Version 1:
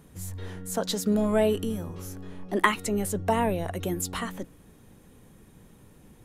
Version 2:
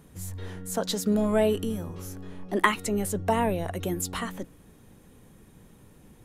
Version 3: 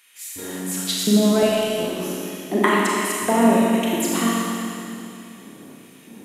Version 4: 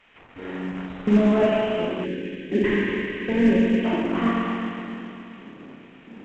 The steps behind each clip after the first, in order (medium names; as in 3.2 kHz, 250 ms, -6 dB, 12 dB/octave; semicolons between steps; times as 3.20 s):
no audible change
in parallel at +2.5 dB: compression, threshold -33 dBFS, peak gain reduction 16.5 dB; on the sum: LFO high-pass square 1.4 Hz 250–2400 Hz; Schroeder reverb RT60 2.7 s, combs from 27 ms, DRR -5 dB; trim -2 dB
CVSD coder 16 kbps; time-frequency box 2.05–3.85 s, 560–1500 Hz -16 dB; µ-law 128 kbps 16 kHz